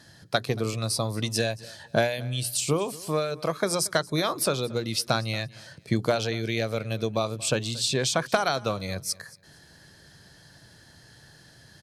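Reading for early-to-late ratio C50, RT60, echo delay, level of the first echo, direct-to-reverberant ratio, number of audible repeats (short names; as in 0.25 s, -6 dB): none, none, 0.23 s, -21.5 dB, none, 2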